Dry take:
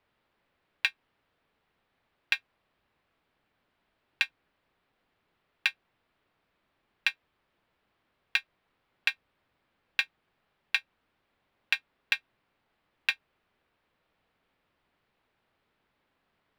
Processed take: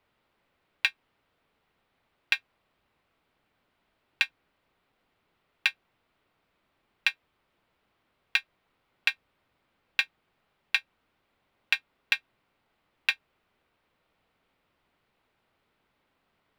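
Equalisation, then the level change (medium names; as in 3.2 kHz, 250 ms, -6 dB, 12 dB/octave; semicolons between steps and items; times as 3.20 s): band-stop 1.7 kHz, Q 19; +2.0 dB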